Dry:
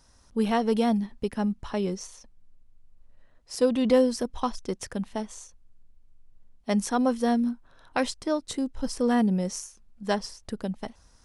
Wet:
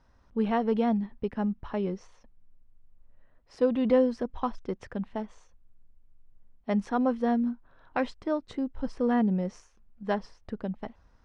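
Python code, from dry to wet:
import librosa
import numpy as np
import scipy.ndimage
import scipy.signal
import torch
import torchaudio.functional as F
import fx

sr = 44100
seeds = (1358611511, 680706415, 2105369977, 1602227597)

y = scipy.signal.sosfilt(scipy.signal.butter(2, 2300.0, 'lowpass', fs=sr, output='sos'), x)
y = y * librosa.db_to_amplitude(-2.0)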